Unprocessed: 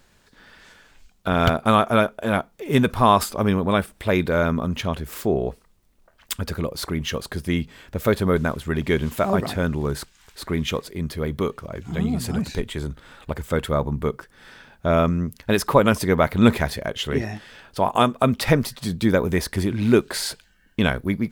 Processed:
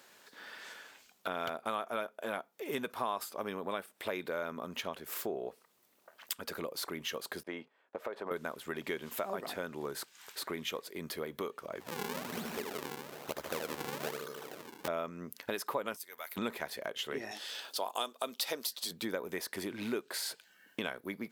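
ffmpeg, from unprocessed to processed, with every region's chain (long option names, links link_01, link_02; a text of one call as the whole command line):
ffmpeg -i in.wav -filter_complex "[0:a]asettb=1/sr,asplit=3[link_01][link_02][link_03];[link_01]atrim=end=7.434[link_04];[link_02]atrim=start=7.43:end=8.31,asetpts=PTS-STARTPTS,afade=type=in:duration=0.004:curve=qsin,afade=type=out:start_time=0.876:duration=0.004:curve=qsin,agate=range=-19dB:threshold=-39dB:ratio=16:release=100:detection=peak,bandpass=frequency=750:width_type=q:width=1,acompressor=threshold=-24dB:ratio=6:attack=3.2:release=140:knee=1:detection=peak[link_05];[link_03]atrim=start=8.306[link_06];[link_04][link_05]acrossfade=duration=0.004:curve1=hsin:curve2=qsin[link_07];[link_07][link_06]acrossfade=duration=0.004:curve1=qsin:curve2=hsin,asettb=1/sr,asplit=3[link_08][link_09][link_10];[link_08]atrim=end=11.804[link_11];[link_09]atrim=start=11.8:end=14.88,asetpts=PTS-STARTPTS,afade=type=in:duration=0.004:curve=qsin,afade=type=out:start_time=3.076:duration=0.004:curve=qsin,aecho=1:1:76|152|228|304|380|456|532|608:0.668|0.388|0.225|0.13|0.0756|0.0439|0.0254|0.0148,atrim=end_sample=135828,acrusher=samples=40:mix=1:aa=0.000001:lfo=1:lforange=64:lforate=1.1[link_12];[link_10]atrim=start=14.876[link_13];[link_11][link_12]acrossfade=duration=0.004:curve1=hsin:curve2=qsin[link_14];[link_14][link_13]acrossfade=duration=0.004:curve1=qsin:curve2=hsin,asettb=1/sr,asplit=3[link_15][link_16][link_17];[link_15]atrim=end=15.964[link_18];[link_16]atrim=start=15.96:end=16.37,asetpts=PTS-STARTPTS,afade=type=in:duration=0.004:curve=qsin,afade=type=out:start_time=0.406:duration=0.004:curve=qsin,aderivative,tremolo=f=170:d=0.519[link_19];[link_17]atrim=start=16.366[link_20];[link_18][link_19]acrossfade=duration=0.004:curve1=hsin:curve2=qsin[link_21];[link_21][link_20]acrossfade=duration=0.004:curve1=qsin:curve2=hsin,asettb=1/sr,asplit=3[link_22][link_23][link_24];[link_22]atrim=end=17.314[link_25];[link_23]atrim=start=17.31:end=18.91,asetpts=PTS-STARTPTS,afade=type=in:duration=0.004:curve=qsin,afade=type=out:start_time=1.596:duration=0.004:curve=qsin,highpass=290,highshelf=frequency=2800:width_type=q:width=1.5:gain=8.5[link_26];[link_24]atrim=start=18.906[link_27];[link_25][link_26]acrossfade=duration=0.004:curve1=hsin:curve2=qsin[link_28];[link_28][link_27]acrossfade=duration=0.004:curve1=qsin:curve2=hsin,highpass=380,equalizer=frequency=13000:width=4.4:gain=8.5,acompressor=threshold=-40dB:ratio=3,volume=1dB" out.wav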